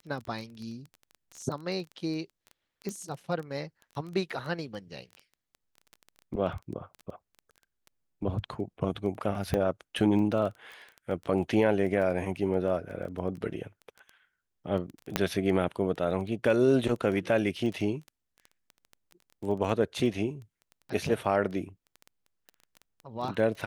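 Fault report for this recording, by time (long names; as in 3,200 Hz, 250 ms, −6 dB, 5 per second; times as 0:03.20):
surface crackle 10 per second −35 dBFS
0:02.89: click −22 dBFS
0:09.54: click −16 dBFS
0:15.16: click −9 dBFS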